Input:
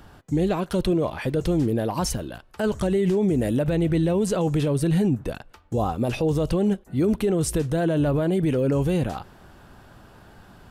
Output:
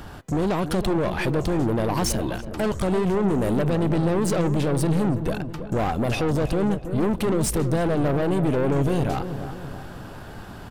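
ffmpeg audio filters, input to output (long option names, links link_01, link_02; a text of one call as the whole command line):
ffmpeg -i in.wav -filter_complex "[0:a]asplit=2[link_01][link_02];[link_02]acompressor=threshold=-32dB:ratio=6,volume=0.5dB[link_03];[link_01][link_03]amix=inputs=2:normalize=0,aeval=exprs='(tanh(15.8*val(0)+0.4)-tanh(0.4))/15.8':channel_layout=same,asplit=2[link_04][link_05];[link_05]adelay=326,lowpass=frequency=1100:poles=1,volume=-9dB,asplit=2[link_06][link_07];[link_07]adelay=326,lowpass=frequency=1100:poles=1,volume=0.51,asplit=2[link_08][link_09];[link_09]adelay=326,lowpass=frequency=1100:poles=1,volume=0.51,asplit=2[link_10][link_11];[link_11]adelay=326,lowpass=frequency=1100:poles=1,volume=0.51,asplit=2[link_12][link_13];[link_13]adelay=326,lowpass=frequency=1100:poles=1,volume=0.51,asplit=2[link_14][link_15];[link_15]adelay=326,lowpass=frequency=1100:poles=1,volume=0.51[link_16];[link_04][link_06][link_08][link_10][link_12][link_14][link_16]amix=inputs=7:normalize=0,volume=4dB" out.wav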